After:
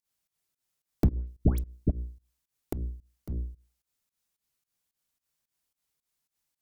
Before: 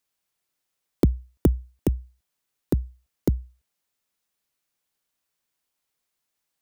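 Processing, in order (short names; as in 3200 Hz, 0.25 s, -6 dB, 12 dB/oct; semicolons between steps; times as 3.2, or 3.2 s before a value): low shelf 110 Hz +2.5 dB; notches 60/120/180/240/300/360/420/480/540/600 Hz; one-sided clip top -26 dBFS; tone controls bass +6 dB, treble +4 dB; 1.14–1.9 dispersion highs, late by 0.133 s, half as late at 1300 Hz; pump 110 bpm, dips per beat 2, -20 dB, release 0.13 s; gain -4.5 dB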